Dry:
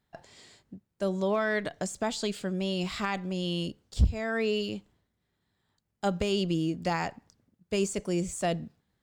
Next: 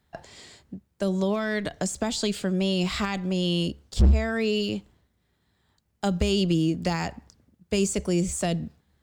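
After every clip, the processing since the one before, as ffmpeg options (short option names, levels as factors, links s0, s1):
-filter_complex "[0:a]equalizer=f=69:w=5.2:g=12.5,acrossover=split=300|3000[s0][s1][s2];[s1]acompressor=threshold=0.02:ratio=6[s3];[s0][s3][s2]amix=inputs=3:normalize=0,volume=10.6,asoftclip=hard,volume=0.0944,volume=2.11"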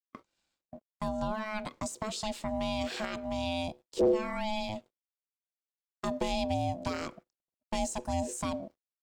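-af "aeval=exprs='sgn(val(0))*max(abs(val(0))-0.00112,0)':c=same,aeval=exprs='val(0)*sin(2*PI*430*n/s)':c=same,agate=range=0.0708:threshold=0.00562:ratio=16:detection=peak,volume=0.562"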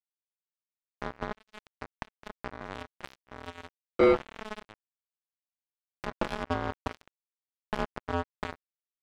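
-af "adynamicsmooth=sensitivity=2.5:basefreq=940,acrusher=bits=3:mix=0:aa=0.5,volume=1.33"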